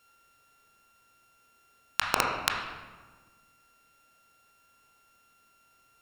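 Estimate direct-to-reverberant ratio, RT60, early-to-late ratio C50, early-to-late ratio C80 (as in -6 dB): -1.0 dB, 1.4 s, 2.5 dB, 4.5 dB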